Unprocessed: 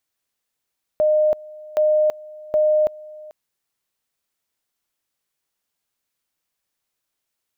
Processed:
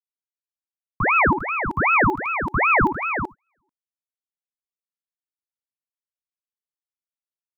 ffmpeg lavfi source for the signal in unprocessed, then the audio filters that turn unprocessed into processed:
-f lavfi -i "aevalsrc='pow(10,(-13.5-22*gte(mod(t,0.77),0.33))/20)*sin(2*PI*612*t)':duration=2.31:sample_rate=44100"
-af "agate=range=-27dB:threshold=-26dB:ratio=16:detection=peak,aecho=1:1:75|157|377|383:0.266|0.299|0.335|0.668,aeval=exprs='val(0)*sin(2*PI*1100*n/s+1100*0.8/2.6*sin(2*PI*2.6*n/s))':channel_layout=same"

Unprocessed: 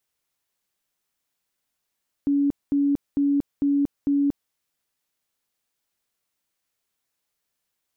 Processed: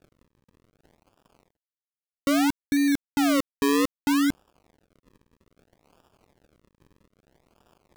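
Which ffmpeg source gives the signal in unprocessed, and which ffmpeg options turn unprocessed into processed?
-f lavfi -i "aevalsrc='0.133*sin(2*PI*283*mod(t,0.45))*lt(mod(t,0.45),66/283)':duration=2.25:sample_rate=44100"
-af "areverse,acompressor=mode=upward:threshold=-30dB:ratio=2.5,areverse,acrusher=samples=42:mix=1:aa=0.000001:lfo=1:lforange=42:lforate=0.62,aeval=exprs='sgn(val(0))*max(abs(val(0))-0.00299,0)':channel_layout=same"

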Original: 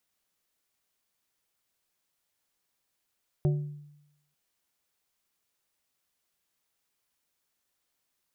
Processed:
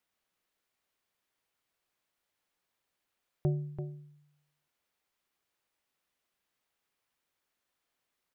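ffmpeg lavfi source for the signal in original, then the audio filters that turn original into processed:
-f lavfi -i "aevalsrc='0.1*pow(10,-3*t/0.87)*sin(2*PI*147*t)+0.0398*pow(10,-3*t/0.458)*sin(2*PI*367.5*t)+0.0158*pow(10,-3*t/0.33)*sin(2*PI*588*t)+0.00631*pow(10,-3*t/0.282)*sin(2*PI*735*t)':duration=0.89:sample_rate=44100"
-af "bass=frequency=250:gain=-3,treble=frequency=4000:gain=-8,aecho=1:1:336:0.398"

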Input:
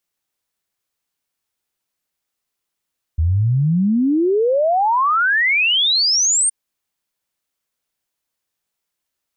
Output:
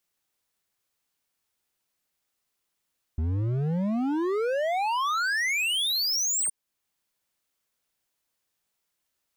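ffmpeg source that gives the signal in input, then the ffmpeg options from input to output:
-f lavfi -i "aevalsrc='0.224*clip(min(t,3.32-t)/0.01,0,1)*sin(2*PI*76*3.32/log(9000/76)*(exp(log(9000/76)*t/3.32)-1))':duration=3.32:sample_rate=44100"
-af "alimiter=limit=-18dB:level=0:latency=1:release=497,volume=25.5dB,asoftclip=hard,volume=-25.5dB"

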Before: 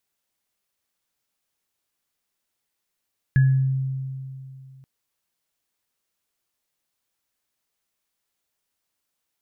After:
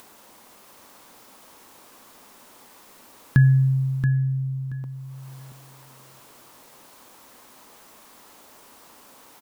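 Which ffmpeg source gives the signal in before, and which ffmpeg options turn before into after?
-f lavfi -i "aevalsrc='0.251*pow(10,-3*t/2.65)*sin(2*PI*133*t)+0.0531*pow(10,-3*t/0.43)*sin(2*PI*1690*t)':duration=1.48:sample_rate=44100"
-filter_complex "[0:a]equalizer=frequency=250:width_type=o:width=1:gain=11,equalizer=frequency=500:width_type=o:width=1:gain=6,equalizer=frequency=1000:width_type=o:width=1:gain=11,acompressor=mode=upward:threshold=-29dB:ratio=2.5,asplit=2[link_01][link_02];[link_02]aecho=0:1:678|1356|2034:0.398|0.0756|0.0144[link_03];[link_01][link_03]amix=inputs=2:normalize=0"

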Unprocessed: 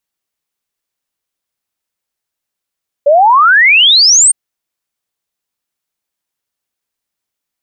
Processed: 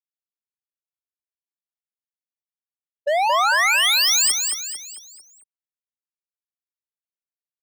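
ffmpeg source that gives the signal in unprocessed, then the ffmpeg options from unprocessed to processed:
-f lavfi -i "aevalsrc='0.668*clip(min(t,1.26-t)/0.01,0,1)*sin(2*PI*550*1.26/log(9000/550)*(exp(log(9000/550)*t/1.26)-1))':duration=1.26:sample_rate=44100"
-filter_complex "[0:a]agate=range=-33dB:threshold=-2dB:ratio=3:detection=peak,asoftclip=type=hard:threshold=-18dB,asplit=2[link_01][link_02];[link_02]aecho=0:1:224|448|672|896|1120:0.562|0.247|0.109|0.0479|0.0211[link_03];[link_01][link_03]amix=inputs=2:normalize=0"

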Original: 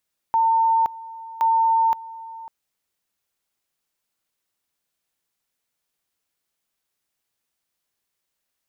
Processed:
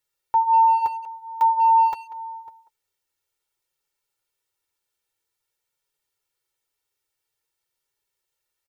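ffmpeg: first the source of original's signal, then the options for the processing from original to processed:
-f lavfi -i "aevalsrc='pow(10,(-15-19*gte(mod(t,1.07),0.52))/20)*sin(2*PI*904*t)':duration=2.14:sample_rate=44100"
-filter_complex "[0:a]aecho=1:1:2.2:0.85,flanger=delay=6.9:depth=3.1:regen=-30:speed=0.5:shape=triangular,asplit=2[link_01][link_02];[link_02]adelay=190,highpass=300,lowpass=3400,asoftclip=type=hard:threshold=-19.5dB,volume=-15dB[link_03];[link_01][link_03]amix=inputs=2:normalize=0"

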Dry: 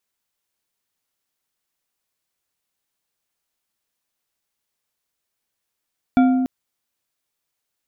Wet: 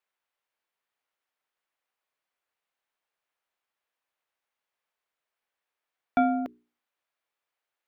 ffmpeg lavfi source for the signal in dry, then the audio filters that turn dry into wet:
-f lavfi -i "aevalsrc='0.316*pow(10,-3*t/1.98)*sin(2*PI*258*t)+0.133*pow(10,-3*t/0.974)*sin(2*PI*711.3*t)+0.0562*pow(10,-3*t/0.608)*sin(2*PI*1394.2*t)+0.0237*pow(10,-3*t/0.428)*sin(2*PI*2304.7*t)+0.01*pow(10,-3*t/0.323)*sin(2*PI*3441.7*t)':duration=0.29:sample_rate=44100"
-filter_complex "[0:a]acrossover=split=410 3000:gain=0.2 1 0.178[link_01][link_02][link_03];[link_01][link_02][link_03]amix=inputs=3:normalize=0,bandreject=frequency=60:width_type=h:width=6,bandreject=frequency=120:width_type=h:width=6,bandreject=frequency=180:width_type=h:width=6,bandreject=frequency=240:width_type=h:width=6,bandreject=frequency=300:width_type=h:width=6,bandreject=frequency=360:width_type=h:width=6,bandreject=frequency=420:width_type=h:width=6"

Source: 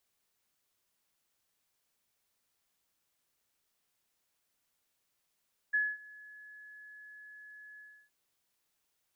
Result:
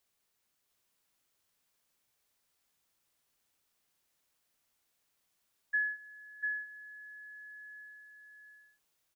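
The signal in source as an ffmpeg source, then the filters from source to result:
-f lavfi -i "aevalsrc='0.0562*sin(2*PI*1700*t)':duration=2.369:sample_rate=44100,afade=type=in:duration=0.016,afade=type=out:start_time=0.016:duration=0.226:silence=0.0631,afade=type=out:start_time=2.06:duration=0.309"
-af "aecho=1:1:694:0.631"

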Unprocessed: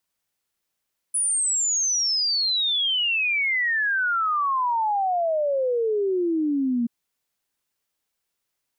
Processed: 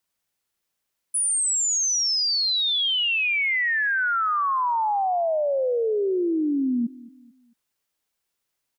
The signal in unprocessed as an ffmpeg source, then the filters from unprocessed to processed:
-f lavfi -i "aevalsrc='0.1*clip(min(t,5.73-t)/0.01,0,1)*sin(2*PI*10000*5.73/log(230/10000)*(exp(log(230/10000)*t/5.73)-1))':duration=5.73:sample_rate=44100"
-filter_complex "[0:a]asplit=2[link_01][link_02];[link_02]adelay=222,lowpass=frequency=3700:poles=1,volume=-20dB,asplit=2[link_03][link_04];[link_04]adelay=222,lowpass=frequency=3700:poles=1,volume=0.4,asplit=2[link_05][link_06];[link_06]adelay=222,lowpass=frequency=3700:poles=1,volume=0.4[link_07];[link_01][link_03][link_05][link_07]amix=inputs=4:normalize=0"

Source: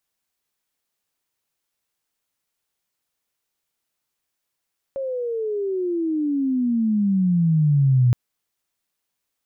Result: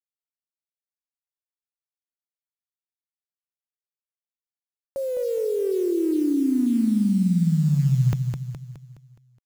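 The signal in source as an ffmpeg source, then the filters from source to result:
-f lavfi -i "aevalsrc='pow(10,(-24+11.5*t/3.17)/20)*sin(2*PI*550*3.17/log(120/550)*(exp(log(120/550)*t/3.17)-1))':duration=3.17:sample_rate=44100"
-filter_complex "[0:a]adynamicequalizer=threshold=0.0316:dfrequency=130:dqfactor=1.1:tfrequency=130:tqfactor=1.1:attack=5:release=100:ratio=0.375:range=2:mode=cutabove:tftype=bell,acrusher=bits=8:dc=4:mix=0:aa=0.000001,asplit=2[link_01][link_02];[link_02]aecho=0:1:209|418|627|836|1045|1254:0.501|0.241|0.115|0.0554|0.0266|0.0128[link_03];[link_01][link_03]amix=inputs=2:normalize=0"

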